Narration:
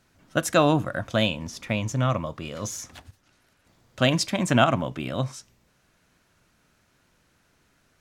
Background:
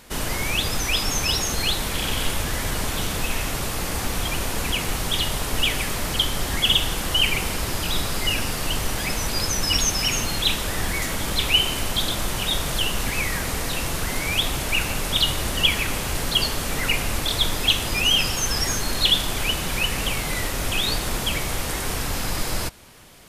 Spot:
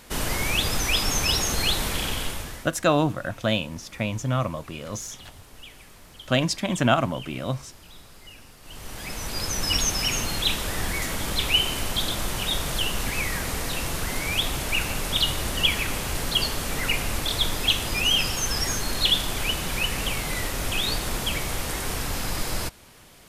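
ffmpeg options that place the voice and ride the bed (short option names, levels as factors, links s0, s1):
-filter_complex "[0:a]adelay=2300,volume=0.891[s0];[1:a]volume=10,afade=t=out:st=1.85:d=0.87:silence=0.0749894,afade=t=in:st=8.62:d=1.09:silence=0.0944061[s1];[s0][s1]amix=inputs=2:normalize=0"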